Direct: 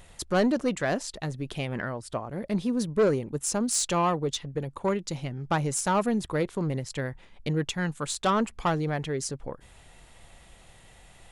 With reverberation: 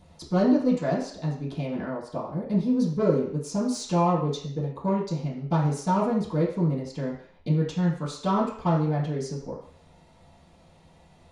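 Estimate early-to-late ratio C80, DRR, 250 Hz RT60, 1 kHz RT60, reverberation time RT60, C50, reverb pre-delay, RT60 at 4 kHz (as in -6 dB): 9.0 dB, -11.0 dB, 0.50 s, 0.55 s, 0.55 s, 5.5 dB, 3 ms, 0.60 s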